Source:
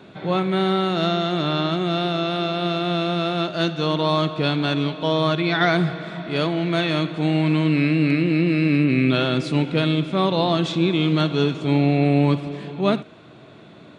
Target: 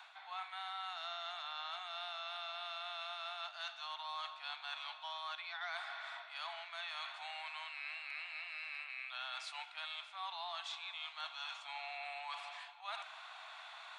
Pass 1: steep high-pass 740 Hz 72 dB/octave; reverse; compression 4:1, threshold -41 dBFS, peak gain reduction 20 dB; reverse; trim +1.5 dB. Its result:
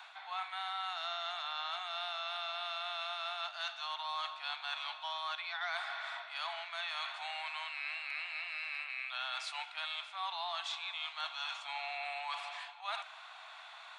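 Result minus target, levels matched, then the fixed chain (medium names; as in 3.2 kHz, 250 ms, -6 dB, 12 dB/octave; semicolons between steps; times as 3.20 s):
compression: peak gain reduction -5 dB
steep high-pass 740 Hz 72 dB/octave; reverse; compression 4:1, threshold -47.5 dBFS, peak gain reduction 24.5 dB; reverse; trim +1.5 dB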